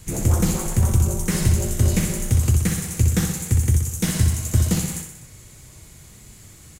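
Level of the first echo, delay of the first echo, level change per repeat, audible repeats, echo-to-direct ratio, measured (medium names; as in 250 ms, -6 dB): -6.0 dB, 62 ms, -4.5 dB, 4, -4.0 dB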